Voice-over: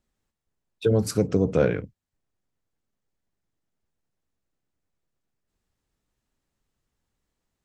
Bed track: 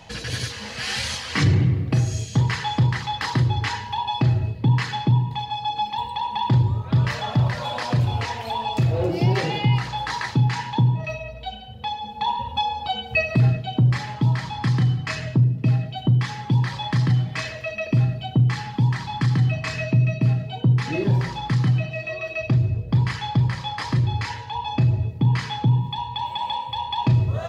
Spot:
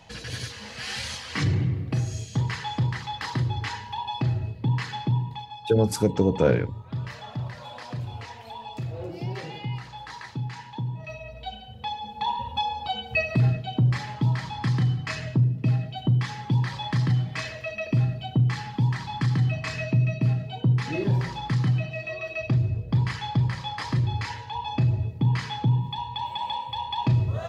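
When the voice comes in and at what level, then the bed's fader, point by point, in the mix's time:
4.85 s, +0.5 dB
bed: 0:05.28 −6 dB
0:05.54 −12.5 dB
0:10.85 −12.5 dB
0:11.40 −3.5 dB

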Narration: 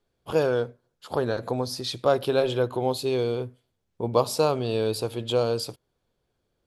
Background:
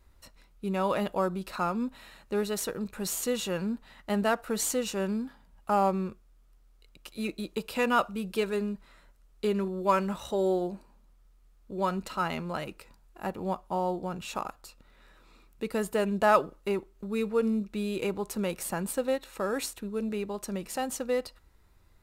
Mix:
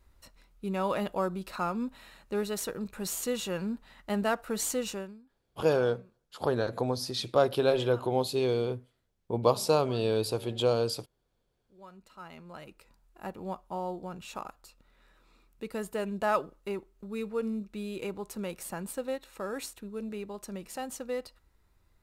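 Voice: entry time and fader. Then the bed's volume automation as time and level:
5.30 s, −2.5 dB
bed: 0:04.93 −2 dB
0:05.22 −24.5 dB
0:11.69 −24.5 dB
0:12.99 −5.5 dB

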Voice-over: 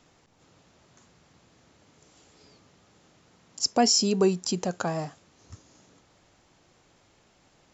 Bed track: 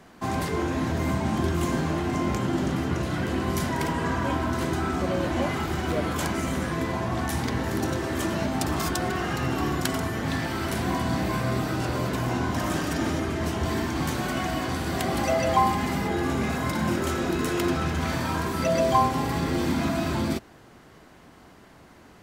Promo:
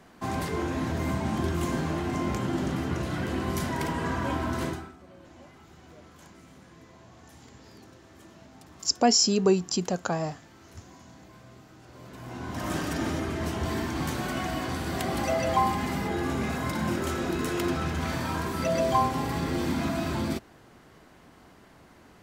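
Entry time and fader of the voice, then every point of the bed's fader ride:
5.25 s, +0.5 dB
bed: 0:04.68 −3 dB
0:04.97 −25 dB
0:11.81 −25 dB
0:12.73 −3 dB

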